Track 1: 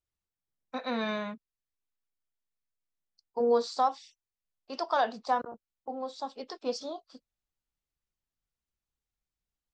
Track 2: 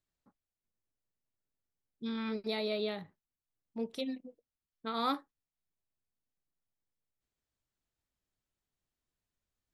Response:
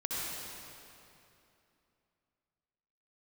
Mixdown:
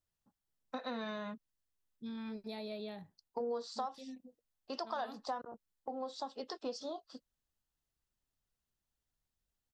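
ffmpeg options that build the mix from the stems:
-filter_complex "[0:a]bandreject=f=2300:w=7.4,volume=1.06[s0];[1:a]equalizer=f=2300:w=0.41:g=-6.5,aecho=1:1:1.2:0.34,volume=0.562[s1];[s0][s1]amix=inputs=2:normalize=0,acompressor=threshold=0.0126:ratio=4"

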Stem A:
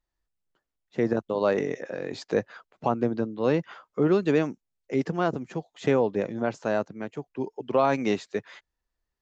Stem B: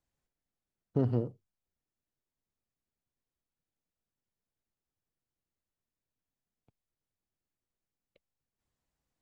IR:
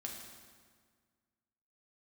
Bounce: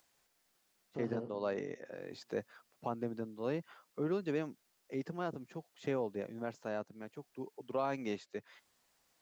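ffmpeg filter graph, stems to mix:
-filter_complex "[0:a]volume=0.224[s0];[1:a]highpass=f=750:p=1,alimiter=level_in=2.37:limit=0.0631:level=0:latency=1,volume=0.422,acompressor=mode=upward:threshold=0.00112:ratio=2.5,volume=0.708,asplit=2[s1][s2];[s2]volume=0.501[s3];[2:a]atrim=start_sample=2205[s4];[s3][s4]afir=irnorm=-1:irlink=0[s5];[s0][s1][s5]amix=inputs=3:normalize=0,equalizer=f=4800:w=3.7:g=2"

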